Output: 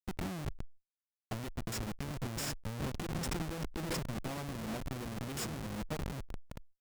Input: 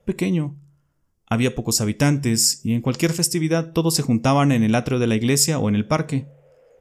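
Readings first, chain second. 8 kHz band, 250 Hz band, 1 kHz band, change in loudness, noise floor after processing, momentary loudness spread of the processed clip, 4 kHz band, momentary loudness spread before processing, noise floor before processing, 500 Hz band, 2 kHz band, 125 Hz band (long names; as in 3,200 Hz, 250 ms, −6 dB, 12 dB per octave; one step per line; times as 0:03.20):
−22.5 dB, −21.0 dB, −17.5 dB, −20.0 dB, below −85 dBFS, 7 LU, −19.5 dB, 5 LU, −66 dBFS, −20.5 dB, −16.5 dB, −18.5 dB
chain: downward compressor 8 to 1, threshold −32 dBFS, peak gain reduction 19 dB
on a send: repeating echo 388 ms, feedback 55%, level −10.5 dB
on the sum: comparator with hysteresis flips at −35 dBFS
harmonic generator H 8 −13 dB, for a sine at −30.5 dBFS
level that may fall only so fast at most 130 dB per second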